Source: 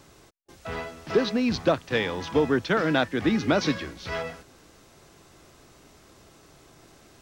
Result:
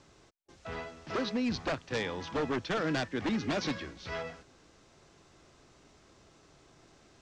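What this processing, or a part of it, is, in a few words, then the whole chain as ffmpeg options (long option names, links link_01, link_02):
synthesiser wavefolder: -af "aeval=exprs='0.119*(abs(mod(val(0)/0.119+3,4)-2)-1)':channel_layout=same,lowpass=frequency=7600:width=0.5412,lowpass=frequency=7600:width=1.3066,volume=-6.5dB"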